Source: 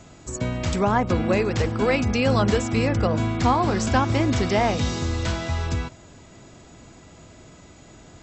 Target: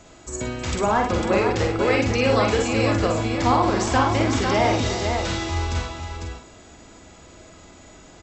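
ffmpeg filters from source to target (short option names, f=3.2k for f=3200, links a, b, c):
-filter_complex "[0:a]equalizer=f=140:w=1.1:g=-8.5,asplit=2[a][b];[b]adelay=46,volume=-6.5dB[c];[a][c]amix=inputs=2:normalize=0,asplit=2[d][e];[e]aecho=0:1:57|315|500:0.501|0.224|0.531[f];[d][f]amix=inputs=2:normalize=0"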